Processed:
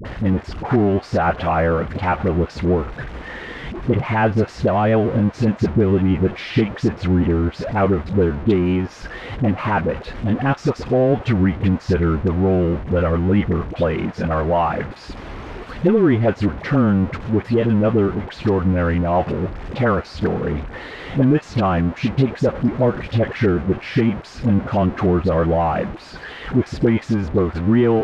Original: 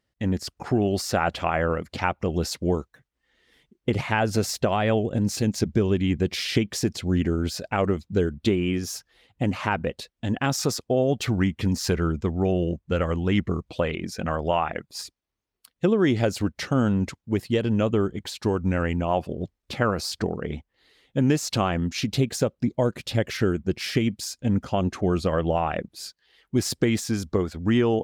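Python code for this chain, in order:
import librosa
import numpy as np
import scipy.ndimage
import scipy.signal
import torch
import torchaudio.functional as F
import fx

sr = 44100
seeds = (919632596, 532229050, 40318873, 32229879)

y = x + 0.5 * 10.0 ** (-26.5 / 20.0) * np.sign(x)
y = scipy.signal.sosfilt(scipy.signal.butter(2, 1800.0, 'lowpass', fs=sr, output='sos'), y)
y = fx.dispersion(y, sr, late='highs', ms=51.0, hz=640.0)
y = F.gain(torch.from_numpy(y), 4.5).numpy()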